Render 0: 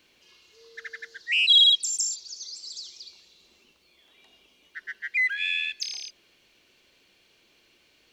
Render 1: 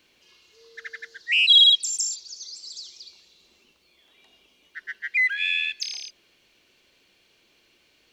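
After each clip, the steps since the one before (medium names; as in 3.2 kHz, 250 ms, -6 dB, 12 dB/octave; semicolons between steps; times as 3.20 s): dynamic bell 2.6 kHz, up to +3 dB, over -38 dBFS, Q 0.74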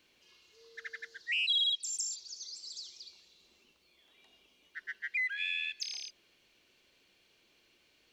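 compression 2:1, threshold -29 dBFS, peak gain reduction 10 dB; trim -6 dB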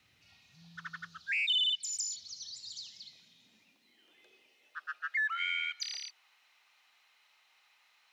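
frequency shift -290 Hz; high-pass sweep 96 Hz -> 880 Hz, 2.47–5.53 s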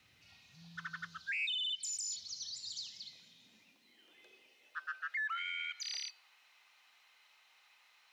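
peak limiter -33 dBFS, peak gain reduction 11 dB; feedback comb 510 Hz, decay 0.46 s, mix 60%; trim +8.5 dB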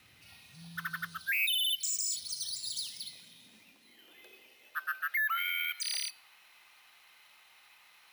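careless resampling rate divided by 3×, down none, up hold; trim +6.5 dB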